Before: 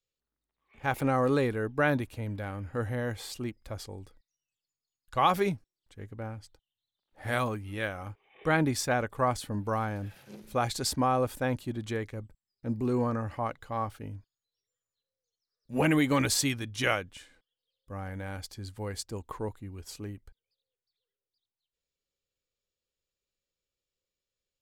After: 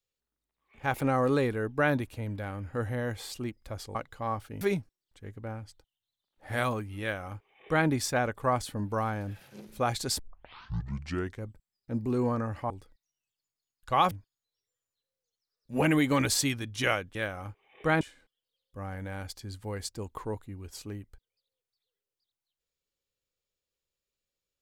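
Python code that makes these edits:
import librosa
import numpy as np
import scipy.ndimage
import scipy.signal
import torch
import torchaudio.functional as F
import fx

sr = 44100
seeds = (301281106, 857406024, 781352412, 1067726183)

y = fx.edit(x, sr, fx.swap(start_s=3.95, length_s=1.41, other_s=13.45, other_length_s=0.66),
    fx.duplicate(start_s=7.76, length_s=0.86, to_s=17.15),
    fx.tape_start(start_s=10.94, length_s=1.24), tone=tone)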